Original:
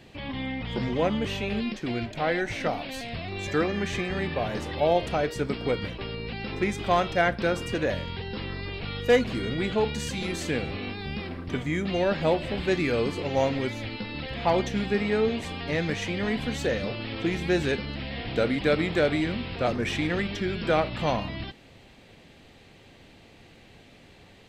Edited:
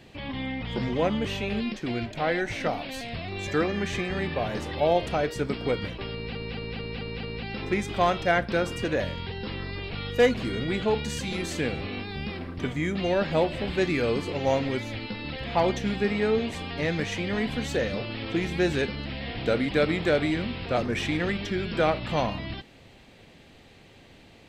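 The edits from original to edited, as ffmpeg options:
-filter_complex "[0:a]asplit=6[a][b][c][d][e][f];[a]atrim=end=6.352[g];[b]atrim=start=6.128:end=6.352[h];[c]atrim=start=6.128:end=6.352[i];[d]atrim=start=6.128:end=6.352[j];[e]atrim=start=6.128:end=6.352[k];[f]atrim=start=6.128[l];[g][h]acrossfade=d=0.004:c1=hsin:c2=hsin[m];[m][i]acrossfade=d=0.004:c1=hsin:c2=hsin[n];[n][j]acrossfade=d=0.004:c1=hsin:c2=hsin[o];[o][k]acrossfade=d=0.004:c1=hsin:c2=hsin[p];[p][l]acrossfade=d=0.004:c1=hsin:c2=hsin"

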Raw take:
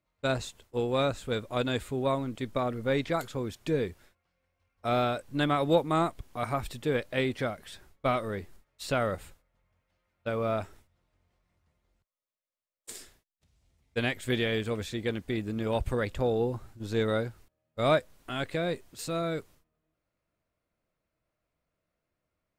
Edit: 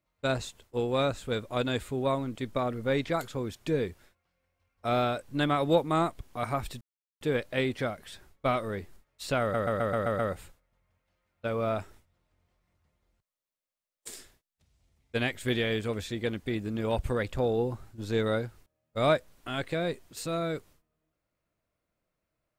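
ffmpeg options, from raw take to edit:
-filter_complex "[0:a]asplit=8[a][b][c][d][e][f][g][h];[a]atrim=end=6.81,asetpts=PTS-STARTPTS,afade=t=out:st=6.806:d=0.004:c=hsin,apad=pad_dur=0.4[i];[b]atrim=start=6.81:end=9.142,asetpts=PTS-STARTPTS,afade=t=in:d=0.004:c=hsin[j];[c]atrim=start=9.008:end=9.142[k];[d]atrim=start=9.008:end=9.142[l];[e]atrim=start=9.008:end=9.142[m];[f]atrim=start=9.008:end=9.142[n];[g]atrim=start=9.008:end=9.142[o];[h]atrim=start=9.008[p];[i][j]concat=n=2:v=0:a=1[q];[q][k]acrossfade=d=0.004:c1=hsin:c2=hsin[r];[r][l]acrossfade=d=0.004:c1=hsin:c2=hsin[s];[s][m]acrossfade=d=0.004:c1=hsin:c2=hsin[t];[t][n]acrossfade=d=0.004:c1=hsin:c2=hsin[u];[u][o]acrossfade=d=0.004:c1=hsin:c2=hsin[v];[v][p]acrossfade=d=0.004:c1=hsin:c2=hsin"

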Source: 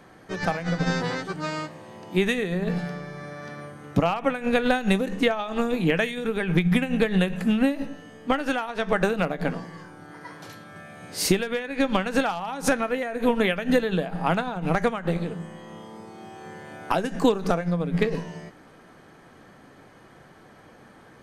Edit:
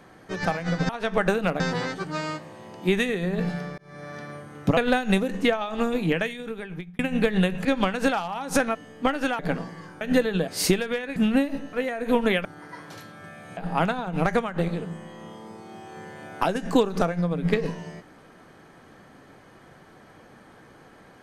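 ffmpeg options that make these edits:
-filter_complex "[0:a]asplit=15[a][b][c][d][e][f][g][h][i][j][k][l][m][n][o];[a]atrim=end=0.892[p];[b]atrim=start=8.638:end=9.352[q];[c]atrim=start=0.888:end=3.07,asetpts=PTS-STARTPTS,afade=t=out:st=2.178:d=0.004:c=hsin[r];[d]atrim=start=3.07:end=4.062,asetpts=PTS-STARTPTS,afade=t=in:d=0.29[s];[e]atrim=start=4.548:end=6.77,asetpts=PTS-STARTPTS,afade=t=out:st=1.152:d=1.07[t];[f]atrim=start=6.77:end=7.432,asetpts=PTS-STARTPTS,afade=t=in:d=0.004:c=hsin[u];[g]atrim=start=11.768:end=12.872[v];[h]atrim=start=7.998:end=8.642[w];[i]atrim=start=9.348:end=9.972[x];[j]atrim=start=13.588:end=14.062[y];[k]atrim=start=11.088:end=11.772[z];[l]atrim=start=7.428:end=8.002[aa];[m]atrim=start=12.868:end=13.592[ab];[n]atrim=start=9.968:end=11.092[ac];[o]atrim=start=14.058[ad];[p][q]acrossfade=d=0.004:c1=hsin:c2=hsin[ae];[r][s]concat=n=2:v=0:a=1[af];[ae][af]acrossfade=d=0.004:c1=hsin:c2=hsin[ag];[t][u]concat=n=2:v=0:a=1[ah];[ag][ah]acrossfade=d=0.004:c1=hsin:c2=hsin[ai];[ai][v]acrossfade=d=0.004:c1=hsin:c2=hsin[aj];[aj][w]acrossfade=d=0.004:c1=hsin:c2=hsin[ak];[ak][x]acrossfade=d=0.004:c1=hsin:c2=hsin[al];[al][y]acrossfade=d=0.004:c1=hsin:c2=hsin[am];[am][z]acrossfade=d=0.004:c1=hsin:c2=hsin[an];[an][aa]acrossfade=d=0.004:c1=hsin:c2=hsin[ao];[ao][ab]acrossfade=d=0.004:c1=hsin:c2=hsin[ap];[ap][ac]acrossfade=d=0.004:c1=hsin:c2=hsin[aq];[aq][ad]acrossfade=d=0.004:c1=hsin:c2=hsin"

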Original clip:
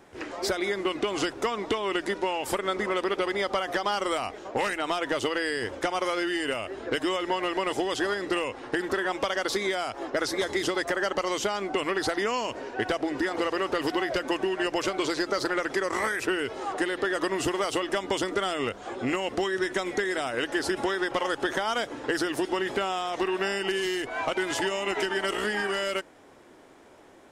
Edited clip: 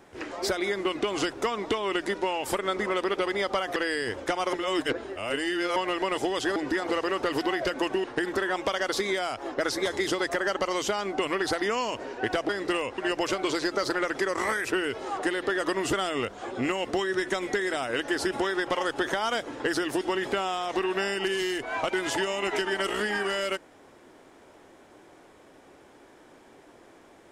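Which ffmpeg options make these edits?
-filter_complex "[0:a]asplit=9[a][b][c][d][e][f][g][h][i];[a]atrim=end=3.762[j];[b]atrim=start=5.308:end=6.082[k];[c]atrim=start=6.078:end=7.312,asetpts=PTS-STARTPTS,areverse[l];[d]atrim=start=7.308:end=8.112[m];[e]atrim=start=13.048:end=14.532[n];[f]atrim=start=8.598:end=13.052[o];[g]atrim=start=8.108:end=8.602[p];[h]atrim=start=14.528:end=17.482[q];[i]atrim=start=18.368[r];[j][k]acrossfade=d=0.004:c1=hsin:c2=hsin[s];[s][l]acrossfade=d=0.004:c1=hsin:c2=hsin[t];[t][m]acrossfade=d=0.004:c1=hsin:c2=hsin[u];[u][n]acrossfade=d=0.004:c1=hsin:c2=hsin[v];[v][o]acrossfade=d=0.004:c1=hsin:c2=hsin[w];[w][p]acrossfade=d=0.004:c1=hsin:c2=hsin[x];[x][q]acrossfade=d=0.004:c1=hsin:c2=hsin[y];[y][r]acrossfade=d=0.004:c1=hsin:c2=hsin"

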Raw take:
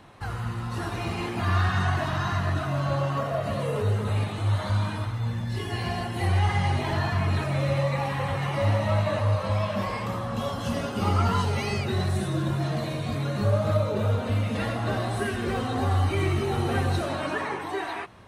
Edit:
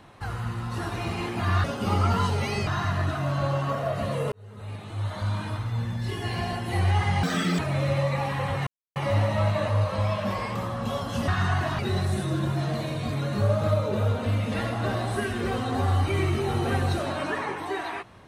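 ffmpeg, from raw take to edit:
-filter_complex "[0:a]asplit=9[a][b][c][d][e][f][g][h][i];[a]atrim=end=1.642[j];[b]atrim=start=10.788:end=11.822[k];[c]atrim=start=2.148:end=3.8,asetpts=PTS-STARTPTS,afade=t=out:st=1.648:d=0.004:c=hsin[l];[d]atrim=start=3.8:end=6.714,asetpts=PTS-STARTPTS,afade=t=in:d=1.34[m];[e]atrim=start=6.71:end=7.39,asetpts=PTS-STARTPTS,asetrate=83790,aresample=44100,atrim=end_sample=15783,asetpts=PTS-STARTPTS[n];[f]atrim=start=7.386:end=8.47,asetpts=PTS-STARTPTS,afade=t=out:st=1.08:d=0.004:c=hsin,apad=pad_dur=0.29[o];[g]atrim=start=8.47:end=10.792,asetpts=PTS-STARTPTS,afade=t=in:d=0.004:c=hsin[p];[h]atrim=start=1.638:end=2.152[q];[i]atrim=start=11.818[r];[j][k]acrossfade=d=0.004:c1=hsin:c2=hsin[s];[l][m]concat=n=2:v=0:a=1[t];[s][t]acrossfade=d=0.004:c1=hsin:c2=hsin[u];[u][n]acrossfade=d=0.004:c1=hsin:c2=hsin[v];[o][p]concat=n=2:v=0:a=1[w];[v][w]acrossfade=d=0.004:c1=hsin:c2=hsin[x];[x][q]acrossfade=d=0.004:c1=hsin:c2=hsin[y];[y][r]acrossfade=d=0.004:c1=hsin:c2=hsin"

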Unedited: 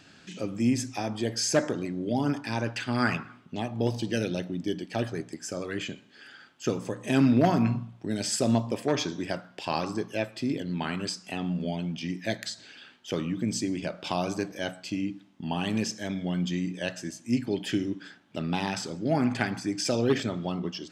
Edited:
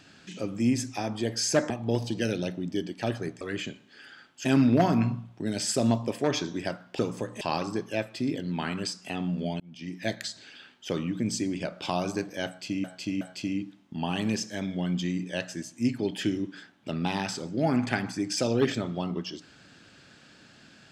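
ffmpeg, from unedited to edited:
-filter_complex "[0:a]asplit=9[a][b][c][d][e][f][g][h][i];[a]atrim=end=1.702[j];[b]atrim=start=3.618:end=5.332[k];[c]atrim=start=5.628:end=6.672[l];[d]atrim=start=7.088:end=9.632[m];[e]atrim=start=6.668:end=7.092[n];[f]atrim=start=9.628:end=11.82,asetpts=PTS-STARTPTS,afade=t=out:st=2.188:d=0.004:c=hsin[o];[g]atrim=start=11.82:end=15.062,asetpts=PTS-STARTPTS,afade=t=in:d=0.48[p];[h]atrim=start=14.688:end=15.062[q];[i]atrim=start=14.688[r];[j][k]acrossfade=d=0.004:c1=hsin:c2=hsin[s];[s][l]acrossfade=d=0.004:c1=hsin:c2=hsin[t];[t][m]acrossfade=d=0.004:c1=hsin:c2=hsin[u];[u][n]acrossfade=d=0.004:c1=hsin:c2=hsin[v];[o][p]concat=n=2:v=0:a=1[w];[v][w]acrossfade=d=0.004:c1=hsin:c2=hsin[x];[x][q]acrossfade=d=0.004:c1=hsin:c2=hsin[y];[y][r]acrossfade=d=0.004:c1=hsin:c2=hsin"

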